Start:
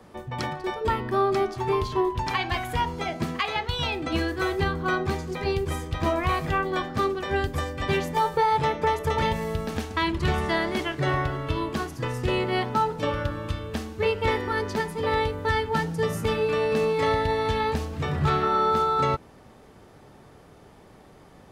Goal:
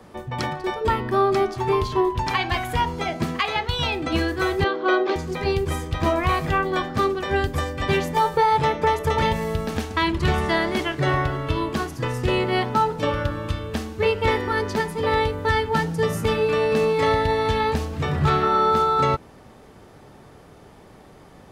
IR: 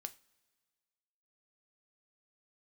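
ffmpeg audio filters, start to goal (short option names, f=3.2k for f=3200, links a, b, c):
-filter_complex "[0:a]asettb=1/sr,asplit=3[a][b][c];[a]atrim=end=4.644[d];[b]atrim=start=4.64:end=5.16,asetpts=PTS-STARTPTS,afade=t=in:d=0.004:c=qsin,afade=t=out:st=0.516:d=0.004:c=qsin,highpass=f=320:w=0.5412,highpass=f=320:w=1.3066,equalizer=f=340:t=q:w=4:g=8,equalizer=f=570:t=q:w=4:g=9,equalizer=f=3.3k:t=q:w=4:g=4,lowpass=f=5.1k:w=0.5412,lowpass=f=5.1k:w=1.3066[e];[c]atrim=start=5.156[f];[d][e]acrossfade=d=0.004:c1=hsin:c2=qsin[g];[g][f]acrossfade=d=0.004:c1=qsin:c2=hsin,volume=3.5dB"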